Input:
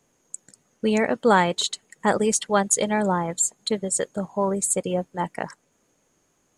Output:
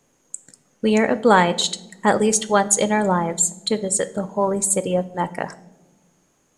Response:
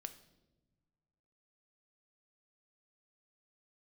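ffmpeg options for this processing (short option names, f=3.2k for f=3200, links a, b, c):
-filter_complex "[0:a]asplit=2[a][b];[1:a]atrim=start_sample=2205,asetrate=52920,aresample=44100[c];[b][c]afir=irnorm=-1:irlink=0,volume=10.5dB[d];[a][d]amix=inputs=2:normalize=0,volume=-5dB"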